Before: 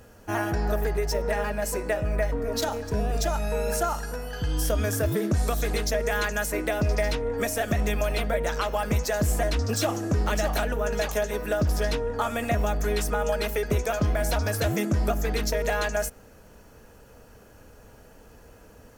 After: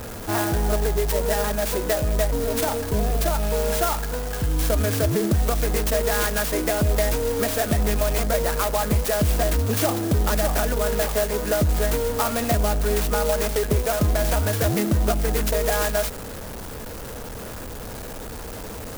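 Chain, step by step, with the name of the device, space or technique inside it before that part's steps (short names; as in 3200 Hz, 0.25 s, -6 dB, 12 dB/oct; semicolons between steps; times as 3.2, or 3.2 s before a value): early CD player with a faulty converter (zero-crossing step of -32 dBFS; clock jitter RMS 0.085 ms); gain +2.5 dB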